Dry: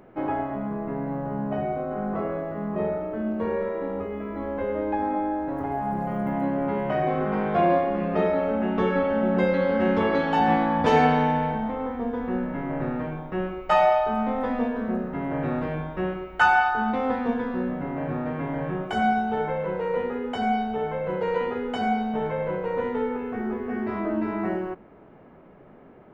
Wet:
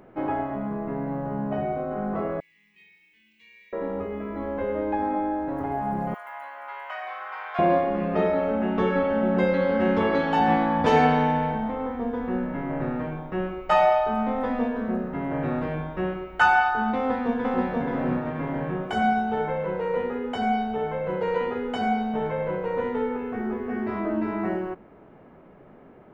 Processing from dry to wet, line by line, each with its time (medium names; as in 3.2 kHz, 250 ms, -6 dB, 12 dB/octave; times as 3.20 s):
2.40–3.73 s: elliptic high-pass 2.2 kHz
6.14–7.59 s: high-pass 960 Hz 24 dB/octave
16.96–17.71 s: echo throw 480 ms, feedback 35%, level -2 dB